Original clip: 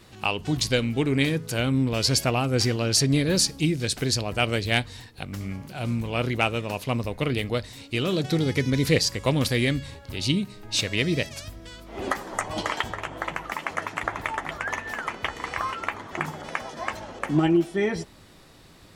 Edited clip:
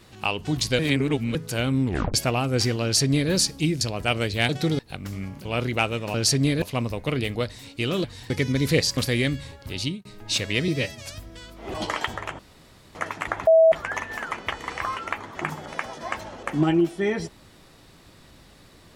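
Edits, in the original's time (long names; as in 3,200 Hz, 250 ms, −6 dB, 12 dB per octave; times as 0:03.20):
0:00.79–0:01.35: reverse
0:01.86: tape stop 0.28 s
0:02.83–0:03.31: duplicate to 0:06.76
0:03.81–0:04.13: remove
0:04.81–0:05.07: swap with 0:08.18–0:08.48
0:05.73–0:06.07: remove
0:09.15–0:09.40: remove
0:10.19–0:10.48: fade out
0:11.11–0:11.37: time-stretch 1.5×
0:12.04–0:12.50: remove
0:13.15–0:13.71: fill with room tone
0:14.23–0:14.48: beep over 649 Hz −11 dBFS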